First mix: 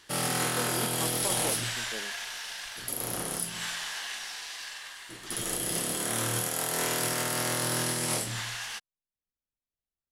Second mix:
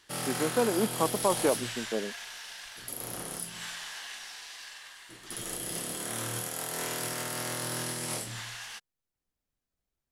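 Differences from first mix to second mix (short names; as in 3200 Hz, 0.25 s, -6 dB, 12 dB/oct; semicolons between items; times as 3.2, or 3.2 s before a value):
speech +11.0 dB; background -5.0 dB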